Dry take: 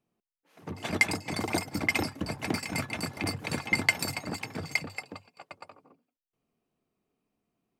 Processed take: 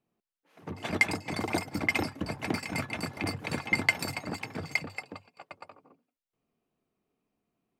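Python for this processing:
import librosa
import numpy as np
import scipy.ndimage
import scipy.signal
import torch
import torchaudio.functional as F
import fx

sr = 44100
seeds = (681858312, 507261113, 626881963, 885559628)

y = fx.bass_treble(x, sr, bass_db=-1, treble_db=-5)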